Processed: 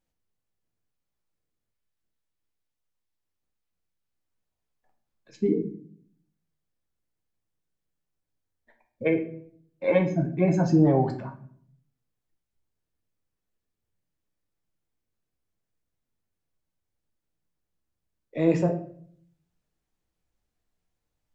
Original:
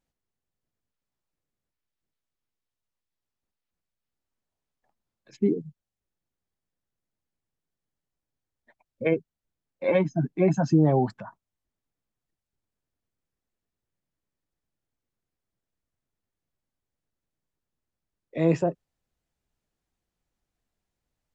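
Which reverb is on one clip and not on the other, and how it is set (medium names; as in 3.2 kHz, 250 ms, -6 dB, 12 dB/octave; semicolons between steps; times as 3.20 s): simulated room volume 77 m³, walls mixed, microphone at 0.48 m; trim -1.5 dB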